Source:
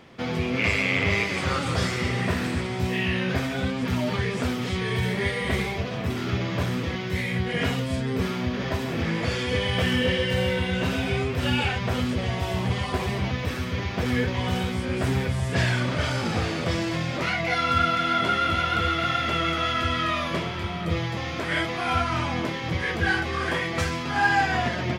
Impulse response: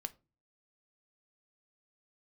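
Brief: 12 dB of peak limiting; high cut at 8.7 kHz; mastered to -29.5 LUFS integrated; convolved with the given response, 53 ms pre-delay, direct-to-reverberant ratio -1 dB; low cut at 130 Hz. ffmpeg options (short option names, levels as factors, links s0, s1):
-filter_complex "[0:a]highpass=130,lowpass=8700,alimiter=limit=0.0794:level=0:latency=1,asplit=2[s0][s1];[1:a]atrim=start_sample=2205,adelay=53[s2];[s1][s2]afir=irnorm=-1:irlink=0,volume=1.41[s3];[s0][s3]amix=inputs=2:normalize=0,volume=0.708"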